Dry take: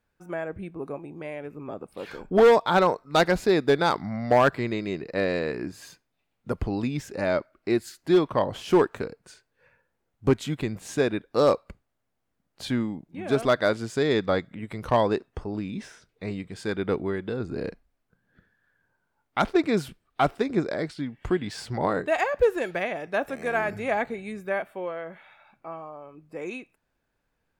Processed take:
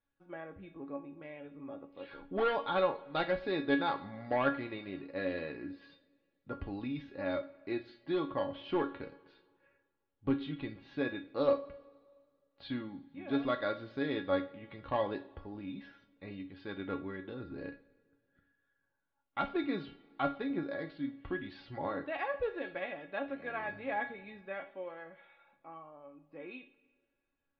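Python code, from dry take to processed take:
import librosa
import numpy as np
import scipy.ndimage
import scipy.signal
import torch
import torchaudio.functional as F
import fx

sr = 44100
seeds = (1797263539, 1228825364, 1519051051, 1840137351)

y = scipy.signal.sosfilt(scipy.signal.butter(8, 4100.0, 'lowpass', fs=sr, output='sos'), x)
y = fx.comb_fb(y, sr, f0_hz=280.0, decay_s=0.17, harmonics='all', damping=0.0, mix_pct=90)
y = fx.rev_double_slope(y, sr, seeds[0], early_s=0.4, late_s=1.9, knee_db=-18, drr_db=8.5)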